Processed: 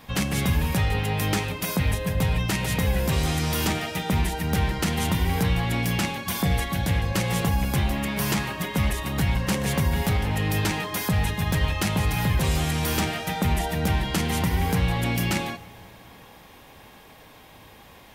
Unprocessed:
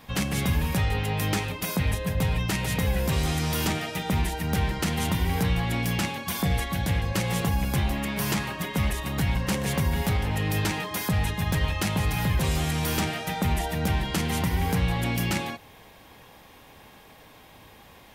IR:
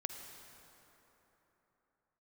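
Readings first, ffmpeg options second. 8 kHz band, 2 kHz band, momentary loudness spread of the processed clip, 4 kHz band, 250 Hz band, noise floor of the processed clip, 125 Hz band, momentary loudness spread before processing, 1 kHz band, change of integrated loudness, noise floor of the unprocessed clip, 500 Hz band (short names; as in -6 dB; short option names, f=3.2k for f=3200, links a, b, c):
+2.0 dB, +2.0 dB, 2 LU, +2.0 dB, +2.0 dB, -49 dBFS, +2.0 dB, 3 LU, +2.0 dB, +2.0 dB, -51 dBFS, +2.0 dB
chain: -filter_complex "[0:a]asplit=2[a][b];[1:a]atrim=start_sample=2205[c];[b][c]afir=irnorm=-1:irlink=0,volume=-11dB[d];[a][d]amix=inputs=2:normalize=0"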